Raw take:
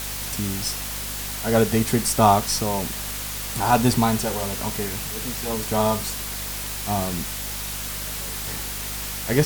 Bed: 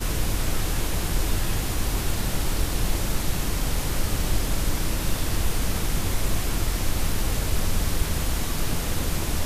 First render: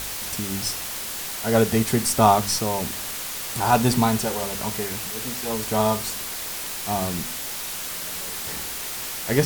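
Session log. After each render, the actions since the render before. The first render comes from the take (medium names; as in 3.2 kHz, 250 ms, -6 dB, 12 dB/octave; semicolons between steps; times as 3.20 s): de-hum 50 Hz, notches 6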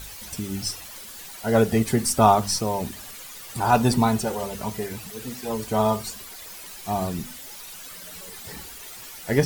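noise reduction 12 dB, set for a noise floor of -32 dBFS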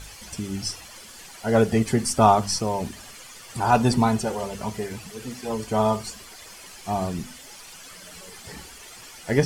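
low-pass 9 kHz 12 dB/octave; band-stop 3.8 kHz, Q 12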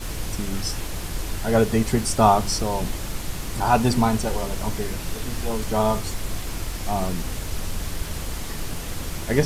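add bed -5 dB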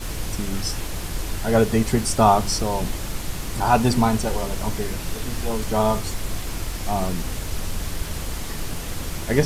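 trim +1 dB; peak limiter -3 dBFS, peak gain reduction 1.5 dB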